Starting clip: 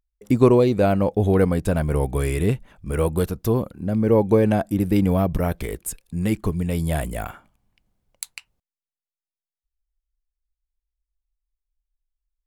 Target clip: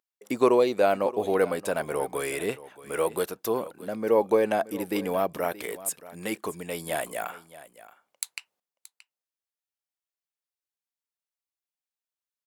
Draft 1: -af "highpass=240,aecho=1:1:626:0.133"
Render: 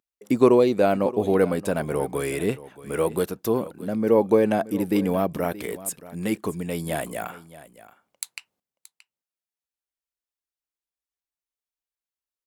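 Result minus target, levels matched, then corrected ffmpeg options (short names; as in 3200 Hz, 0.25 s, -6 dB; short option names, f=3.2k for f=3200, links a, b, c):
250 Hz band +4.0 dB
-af "highpass=480,aecho=1:1:626:0.133"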